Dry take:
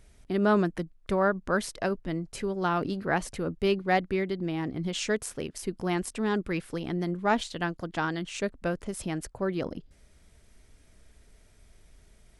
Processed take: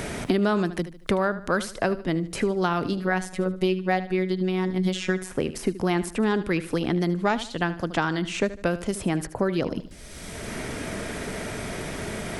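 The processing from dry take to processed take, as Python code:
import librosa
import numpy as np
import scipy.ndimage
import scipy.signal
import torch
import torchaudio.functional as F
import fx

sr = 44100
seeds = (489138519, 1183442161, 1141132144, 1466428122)

y = fx.robotise(x, sr, hz=185.0, at=(2.98, 5.3))
y = fx.echo_feedback(y, sr, ms=75, feedback_pct=28, wet_db=-15)
y = fx.band_squash(y, sr, depth_pct=100)
y = y * 10.0 ** (4.0 / 20.0)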